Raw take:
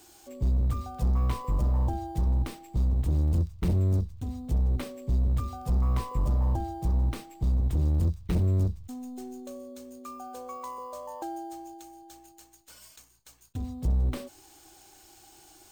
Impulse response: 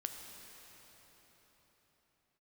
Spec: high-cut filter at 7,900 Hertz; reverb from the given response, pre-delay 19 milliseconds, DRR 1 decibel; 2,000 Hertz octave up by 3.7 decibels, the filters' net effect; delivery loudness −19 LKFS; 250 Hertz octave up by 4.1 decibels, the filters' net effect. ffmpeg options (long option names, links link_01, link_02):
-filter_complex "[0:a]lowpass=7900,equalizer=frequency=250:width_type=o:gain=5.5,equalizer=frequency=2000:width_type=o:gain=4.5,asplit=2[link_01][link_02];[1:a]atrim=start_sample=2205,adelay=19[link_03];[link_02][link_03]afir=irnorm=-1:irlink=0,volume=0dB[link_04];[link_01][link_04]amix=inputs=2:normalize=0,volume=6dB"